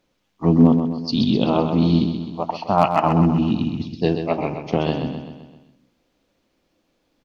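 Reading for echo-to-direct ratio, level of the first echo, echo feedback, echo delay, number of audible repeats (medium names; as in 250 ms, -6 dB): -6.0 dB, -7.5 dB, 52%, 129 ms, 5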